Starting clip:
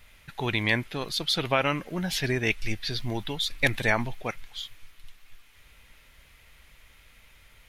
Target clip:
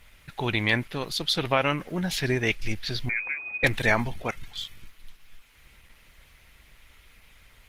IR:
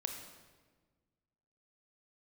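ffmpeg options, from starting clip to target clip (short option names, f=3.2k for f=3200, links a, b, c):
-filter_complex "[0:a]asettb=1/sr,asplit=3[a][b][c];[a]atrim=end=3.094[d];[b]atrim=start=3.09:end=3.64,asetpts=PTS-STARTPTS,afade=t=in:d=0.004:c=qsin,afade=t=out:st=0.546:d=0.004:c=qsin,lowpass=f=2.1k:t=q:w=0.5098,lowpass=f=2.1k:t=q:w=0.6013,lowpass=f=2.1k:t=q:w=0.9,lowpass=f=2.1k:t=q:w=2.563,afreqshift=-2500[e];[c]atrim=start=3.636[f];[d][e]acrossfade=d=0.004:c1=hsin:c2=qsin[g];[g][f]acrossfade=d=0.004:c1=qsin:c2=hsin,volume=2dB" -ar 48000 -c:a libopus -b:a 16k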